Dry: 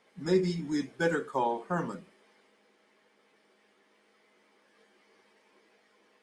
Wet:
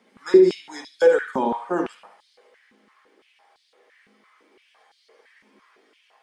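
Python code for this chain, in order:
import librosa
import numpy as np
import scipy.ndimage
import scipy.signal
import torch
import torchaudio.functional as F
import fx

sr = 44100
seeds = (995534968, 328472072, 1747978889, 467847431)

y = fx.echo_bbd(x, sr, ms=72, stages=2048, feedback_pct=39, wet_db=-7.5)
y = fx.filter_held_highpass(y, sr, hz=5.9, low_hz=220.0, high_hz=4100.0)
y = y * 10.0 ** (3.0 / 20.0)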